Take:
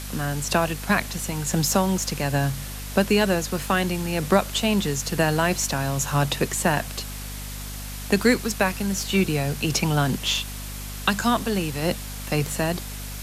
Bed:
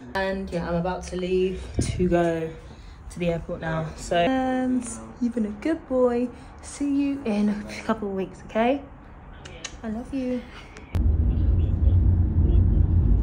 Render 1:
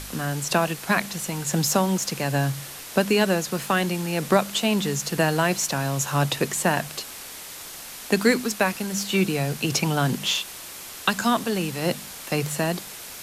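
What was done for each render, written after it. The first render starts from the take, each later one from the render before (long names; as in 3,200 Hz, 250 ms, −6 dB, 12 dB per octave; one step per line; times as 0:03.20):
hum removal 50 Hz, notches 5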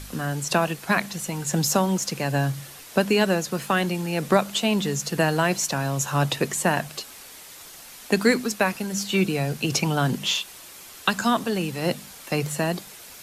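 broadband denoise 6 dB, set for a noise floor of −39 dBFS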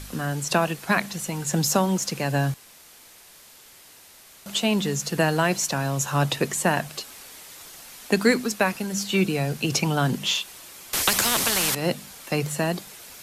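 0:02.54–0:04.46: fill with room tone
0:10.93–0:11.75: every bin compressed towards the loudest bin 4 to 1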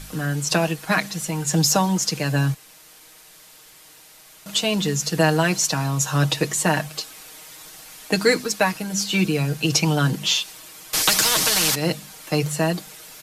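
dynamic equaliser 5,100 Hz, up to +5 dB, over −37 dBFS, Q 1.2
comb filter 6.4 ms, depth 67%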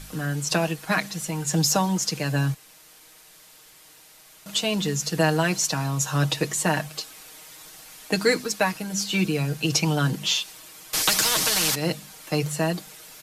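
level −3 dB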